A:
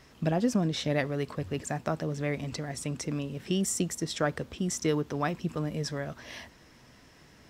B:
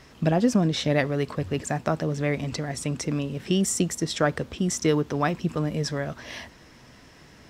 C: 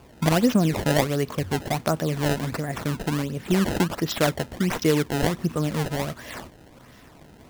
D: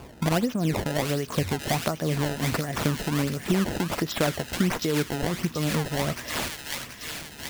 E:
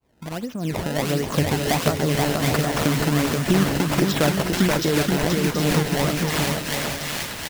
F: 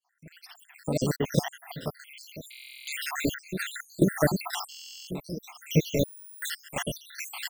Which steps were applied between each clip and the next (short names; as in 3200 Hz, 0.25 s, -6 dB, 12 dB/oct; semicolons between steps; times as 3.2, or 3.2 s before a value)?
high shelf 12000 Hz -6 dB; gain +5.5 dB
decimation with a swept rate 22×, swing 160% 1.4 Hz; gain +1.5 dB
thin delay 0.73 s, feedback 56%, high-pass 2000 Hz, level -4 dB; compressor 5:1, threshold -27 dBFS, peak gain reduction 12 dB; tremolo 2.8 Hz, depth 52%; gain +7 dB
opening faded in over 1.21 s; on a send: bouncing-ball echo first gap 0.48 s, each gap 0.6×, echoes 5; on the sum: gain +4 dB
random spectral dropouts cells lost 79%; step gate "x.x.xxx.....xxx" 71 bpm -12 dB; stuck buffer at 2.5/4.7/6.05, samples 1024, times 15